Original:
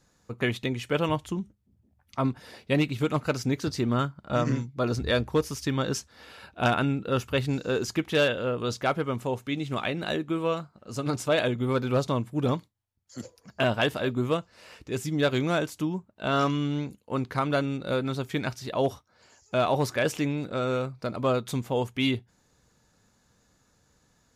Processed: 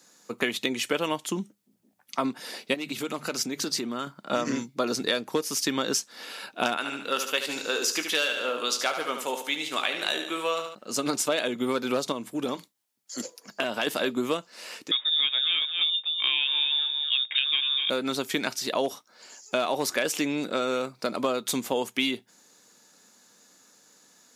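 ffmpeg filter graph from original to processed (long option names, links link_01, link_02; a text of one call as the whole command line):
ffmpeg -i in.wav -filter_complex "[0:a]asettb=1/sr,asplit=3[link_01][link_02][link_03];[link_01]atrim=end=2.744[link_04];[link_02]atrim=start=2.74:end=4.07,asetpts=PTS-STARTPTS,afade=type=in:duration=0.004:curve=qsin,afade=type=out:start_time=1.326:duration=0.004:curve=qsin,highpass=48,bandreject=frequency=50:width_type=h:width=6,bandreject=frequency=100:width_type=h:width=6,bandreject=frequency=150:width_type=h:width=6,acompressor=threshold=-31dB:ratio=5:attack=3.2:release=140:knee=1:detection=peak[link_05];[link_03]atrim=start=4.066[link_06];[link_04][link_05]acrossfade=duration=0.004:curve1=hsin:curve2=qsin[link_07];[link_07][link_06]acrossfade=duration=0.004:curve1=qsin:curve2=hsin,asettb=1/sr,asplit=3[link_08][link_09][link_10];[link_08]atrim=end=6.774[link_11];[link_09]atrim=start=6.77:end=10.75,asetpts=PTS-STARTPTS,afade=type=in:duration=0.004:curve=qsin,afade=type=out:start_time=3.976:duration=0.004:curve=qsin,highpass=frequency=950:poles=1,asplit=2[link_12][link_13];[link_13]adelay=20,volume=-11dB[link_14];[link_12][link_14]amix=inputs=2:normalize=0,atrim=end_sample=175518,aecho=1:1:73|146|219|292|365:0.376|0.165|0.0728|0.032|0.0141,atrim=end_sample=175518[link_15];[link_10]atrim=start=10.746[link_16];[link_11][link_15]acrossfade=duration=0.004:curve1=hsin:curve2=qsin[link_17];[link_17][link_16]acrossfade=duration=0.004:curve1=qsin:curve2=hsin,asettb=1/sr,asplit=3[link_18][link_19][link_20];[link_18]atrim=end=12.124[link_21];[link_19]atrim=start=12.12:end=13.87,asetpts=PTS-STARTPTS,afade=type=in:duration=0.004:curve=qsin,afade=type=out:start_time=1.746:duration=0.004:curve=qsin,bandreject=frequency=170:width=5.2,acompressor=threshold=-29dB:ratio=4:attack=3.2:release=140:knee=1:detection=peak[link_22];[link_20]atrim=start=13.866[link_23];[link_21][link_22]acrossfade=duration=0.004:curve1=hsin:curve2=qsin[link_24];[link_24][link_23]acrossfade=duration=0.004:curve1=qsin:curve2=hsin,asettb=1/sr,asplit=3[link_25][link_26][link_27];[link_25]atrim=end=14.914[link_28];[link_26]atrim=start=14.91:end=17.9,asetpts=PTS-STARTPTS,afade=type=in:duration=0.004:curve=qsin,afade=type=out:start_time=2.986:duration=0.004:curve=qsin,lowpass=frequency=3200:width_type=q:width=0.5098,lowpass=frequency=3200:width_type=q:width=0.6013,lowpass=frequency=3200:width_type=q:width=0.9,lowpass=frequency=3200:width_type=q:width=2.563,afreqshift=-3800,aecho=1:1:245:0.299,atrim=end_sample=131859[link_29];[link_27]atrim=start=17.896[link_30];[link_28][link_29]acrossfade=duration=0.004:curve1=hsin:curve2=qsin[link_31];[link_31][link_30]acrossfade=duration=0.004:curve1=qsin:curve2=hsin,highpass=frequency=210:width=0.5412,highpass=frequency=210:width=1.3066,highshelf=frequency=2900:gain=10,acompressor=threshold=-27dB:ratio=6,volume=4.5dB" out.wav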